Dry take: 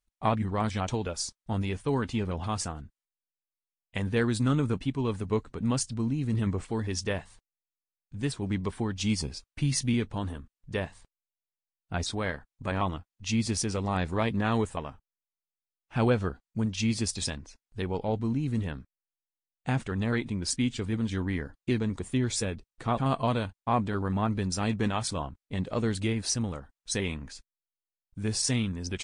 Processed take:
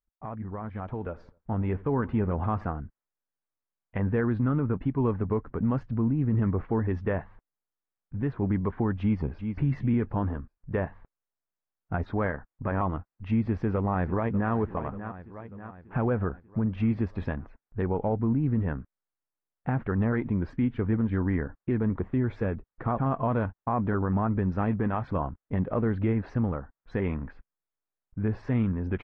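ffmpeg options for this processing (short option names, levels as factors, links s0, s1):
-filter_complex "[0:a]asettb=1/sr,asplit=3[s0][s1][s2];[s0]atrim=end=0.744[s3];[s1]atrim=start=0.74:end=2.7,asetpts=PTS-STARTPTS,afade=t=in:d=0.004:c=qsin,afade=t=out:st=1.956:d=0.004:c=qsin,asplit=2[s4][s5];[s5]adelay=84,lowpass=f=2000:p=1,volume=0.0708,asplit=2[s6][s7];[s7]adelay=84,lowpass=f=2000:p=1,volume=0.48,asplit=2[s8][s9];[s9]adelay=84,lowpass=f=2000:p=1,volume=0.48[s10];[s4][s6][s8][s10]amix=inputs=4:normalize=0,atrim=end_sample=86436[s11];[s2]atrim=start=2.696[s12];[s3][s11]acrossfade=d=0.004:c1=hsin:c2=qsin[s13];[s13][s12]acrossfade=d=0.004:c1=qsin:c2=hsin,asplit=2[s14][s15];[s15]afade=t=in:st=9:d=0.01,afade=t=out:st=9.52:d=0.01,aecho=0:1:380|760|1140:0.316228|0.0948683|0.0284605[s16];[s14][s16]amix=inputs=2:normalize=0,asplit=2[s17][s18];[s18]afade=t=in:st=13.41:d=0.01,afade=t=out:st=14.52:d=0.01,aecho=0:1:590|1180|1770|2360|2950:0.177828|0.0978054|0.053793|0.0295861|0.0162724[s19];[s17][s19]amix=inputs=2:normalize=0,lowpass=f=1700:w=0.5412,lowpass=f=1700:w=1.3066,alimiter=limit=0.0668:level=0:latency=1:release=117,dynaudnorm=f=250:g=11:m=3.16,volume=0.596"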